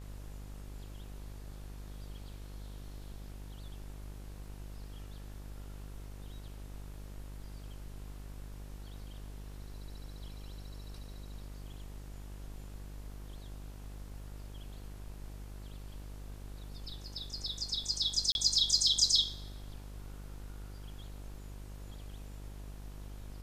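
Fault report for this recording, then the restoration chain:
mains buzz 50 Hz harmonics 37 −46 dBFS
0:18.32–0:18.35: drop-out 31 ms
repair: hum removal 50 Hz, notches 37
repair the gap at 0:18.32, 31 ms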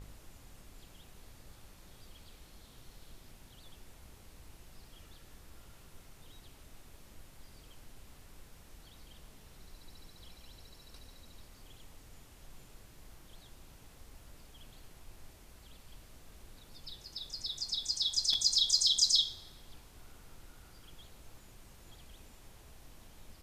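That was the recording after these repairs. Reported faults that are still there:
none of them is left

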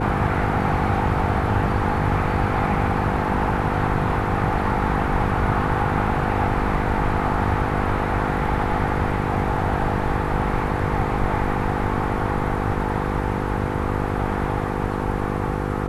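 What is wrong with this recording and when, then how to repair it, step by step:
mains buzz 50 Hz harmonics 10 −26 dBFS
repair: hum removal 50 Hz, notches 10

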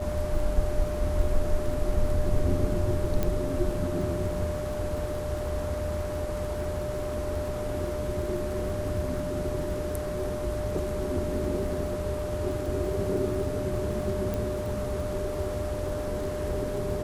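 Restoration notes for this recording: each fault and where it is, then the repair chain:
surface crackle 28 per second −35 dBFS
whistle 600 Hz −32 dBFS
0:03.23: click −14 dBFS
0:14.34: click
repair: click removal
notch filter 600 Hz, Q 30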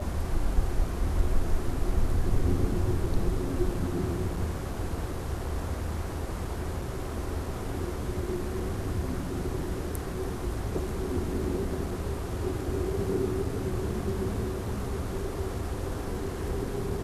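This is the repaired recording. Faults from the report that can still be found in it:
none of them is left

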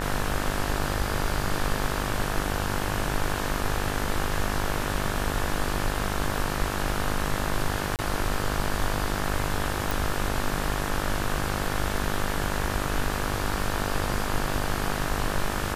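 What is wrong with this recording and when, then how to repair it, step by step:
mains buzz 50 Hz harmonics 36 −31 dBFS
0:07.96–0:07.99: drop-out 28 ms
0:09.91: click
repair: click removal
hum removal 50 Hz, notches 36
repair the gap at 0:07.96, 28 ms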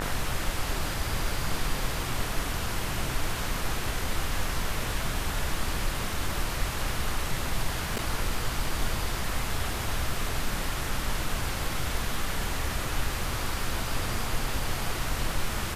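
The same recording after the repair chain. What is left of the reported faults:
none of them is left

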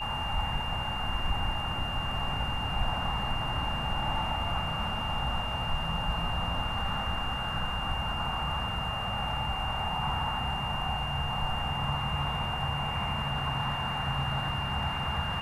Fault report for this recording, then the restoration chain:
whistle 2,800 Hz −35 dBFS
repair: notch filter 2,800 Hz, Q 30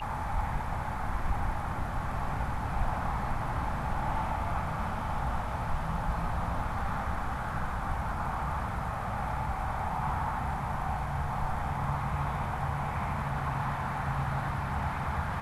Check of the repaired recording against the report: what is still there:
none of them is left

